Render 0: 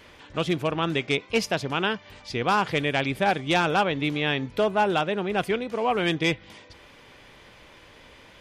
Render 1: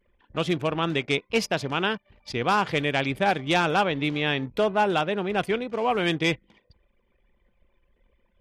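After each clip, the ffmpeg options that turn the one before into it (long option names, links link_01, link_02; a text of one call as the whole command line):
ffmpeg -i in.wav -af "bandreject=frequency=50:width_type=h:width=6,bandreject=frequency=100:width_type=h:width=6,anlmdn=0.251" out.wav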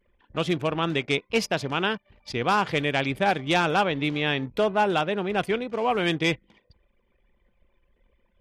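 ffmpeg -i in.wav -af anull out.wav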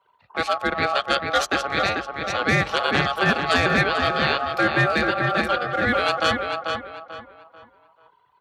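ffmpeg -i in.wav -filter_complex "[0:a]aeval=exprs='val(0)*sin(2*PI*930*n/s)':channel_layout=same,afreqshift=44,asplit=2[link_01][link_02];[link_02]adelay=440,lowpass=frequency=2900:poles=1,volume=-4dB,asplit=2[link_03][link_04];[link_04]adelay=440,lowpass=frequency=2900:poles=1,volume=0.33,asplit=2[link_05][link_06];[link_06]adelay=440,lowpass=frequency=2900:poles=1,volume=0.33,asplit=2[link_07][link_08];[link_08]adelay=440,lowpass=frequency=2900:poles=1,volume=0.33[link_09];[link_01][link_03][link_05][link_07][link_09]amix=inputs=5:normalize=0,volume=5dB" out.wav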